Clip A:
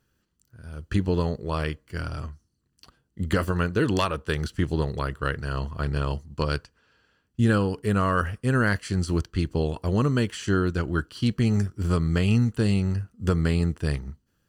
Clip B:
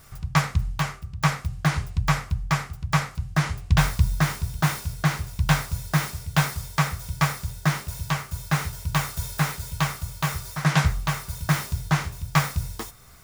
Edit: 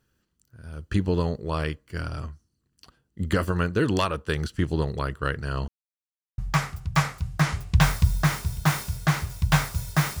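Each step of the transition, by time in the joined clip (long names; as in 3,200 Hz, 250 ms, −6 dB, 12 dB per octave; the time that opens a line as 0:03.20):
clip A
0:05.68–0:06.38: silence
0:06.38: continue with clip B from 0:02.35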